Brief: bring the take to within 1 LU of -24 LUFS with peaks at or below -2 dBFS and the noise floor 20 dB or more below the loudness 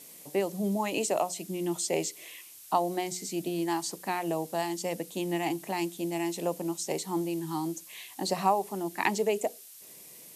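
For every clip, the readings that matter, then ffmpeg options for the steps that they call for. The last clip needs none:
noise floor -50 dBFS; noise floor target -52 dBFS; loudness -31.5 LUFS; peak level -10.0 dBFS; loudness target -24.0 LUFS
-> -af "afftdn=nr=6:nf=-50"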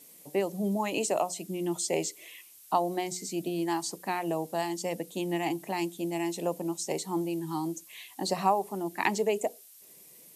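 noise floor -54 dBFS; loudness -31.5 LUFS; peak level -10.0 dBFS; loudness target -24.0 LUFS
-> -af "volume=2.37"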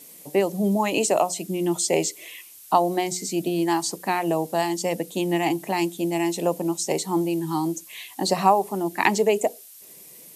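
loudness -24.0 LUFS; peak level -2.5 dBFS; noise floor -47 dBFS

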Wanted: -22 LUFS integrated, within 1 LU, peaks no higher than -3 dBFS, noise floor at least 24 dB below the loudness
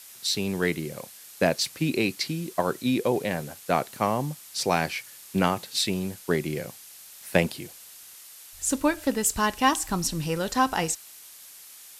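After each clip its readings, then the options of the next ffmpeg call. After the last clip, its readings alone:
noise floor -47 dBFS; noise floor target -51 dBFS; loudness -26.5 LUFS; peak level -5.5 dBFS; loudness target -22.0 LUFS
-> -af "afftdn=nr=6:nf=-47"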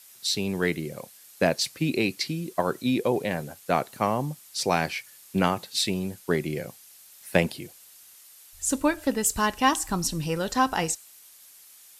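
noise floor -52 dBFS; loudness -27.0 LUFS; peak level -5.5 dBFS; loudness target -22.0 LUFS
-> -af "volume=1.78,alimiter=limit=0.708:level=0:latency=1"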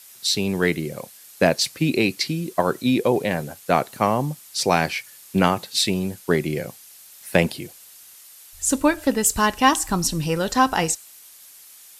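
loudness -22.0 LUFS; peak level -3.0 dBFS; noise floor -47 dBFS

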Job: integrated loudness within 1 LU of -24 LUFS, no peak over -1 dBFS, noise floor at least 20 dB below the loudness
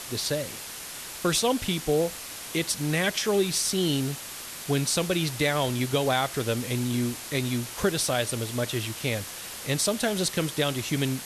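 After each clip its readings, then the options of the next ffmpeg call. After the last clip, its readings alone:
noise floor -39 dBFS; noise floor target -47 dBFS; loudness -27.0 LUFS; peak level -12.5 dBFS; loudness target -24.0 LUFS
-> -af "afftdn=nr=8:nf=-39"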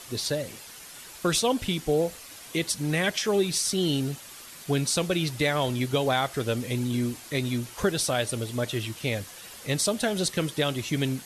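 noise floor -45 dBFS; noise floor target -47 dBFS
-> -af "afftdn=nr=6:nf=-45"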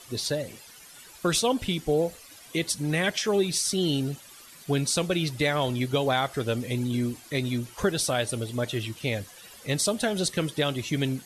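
noise floor -49 dBFS; loudness -27.0 LUFS; peak level -12.5 dBFS; loudness target -24.0 LUFS
-> -af "volume=1.41"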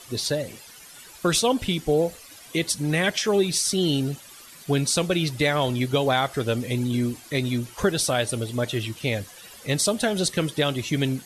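loudness -24.0 LUFS; peak level -9.5 dBFS; noise floor -46 dBFS

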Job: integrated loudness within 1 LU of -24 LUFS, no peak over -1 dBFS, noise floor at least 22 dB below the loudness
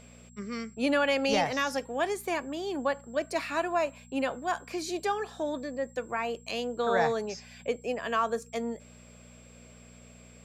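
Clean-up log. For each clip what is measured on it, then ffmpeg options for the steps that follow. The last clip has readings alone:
hum 60 Hz; highest harmonic 240 Hz; hum level -51 dBFS; steady tone 7.6 kHz; tone level -58 dBFS; loudness -31.0 LUFS; peak level -15.5 dBFS; loudness target -24.0 LUFS
-> -af "bandreject=f=60:t=h:w=4,bandreject=f=120:t=h:w=4,bandreject=f=180:t=h:w=4,bandreject=f=240:t=h:w=4"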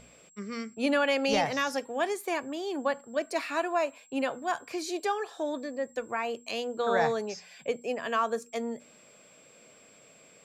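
hum not found; steady tone 7.6 kHz; tone level -58 dBFS
-> -af "bandreject=f=7600:w=30"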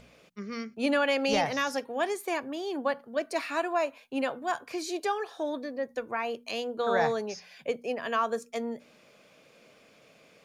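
steady tone not found; loudness -31.0 LUFS; peak level -15.5 dBFS; loudness target -24.0 LUFS
-> -af "volume=2.24"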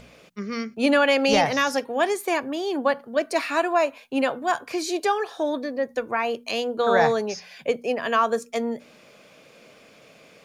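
loudness -24.0 LUFS; peak level -8.5 dBFS; noise floor -52 dBFS

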